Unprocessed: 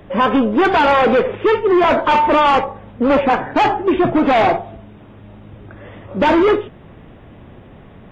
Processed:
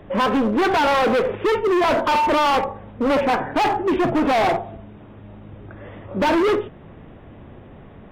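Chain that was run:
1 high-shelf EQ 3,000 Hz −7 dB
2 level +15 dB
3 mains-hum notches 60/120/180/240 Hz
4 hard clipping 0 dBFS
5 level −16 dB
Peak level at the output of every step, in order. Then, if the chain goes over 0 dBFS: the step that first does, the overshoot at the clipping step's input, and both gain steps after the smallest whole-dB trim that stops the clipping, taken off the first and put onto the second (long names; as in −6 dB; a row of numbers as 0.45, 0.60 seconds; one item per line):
−8.5, +6.5, +8.5, 0.0, −16.0 dBFS
step 2, 8.5 dB
step 2 +6 dB, step 5 −7 dB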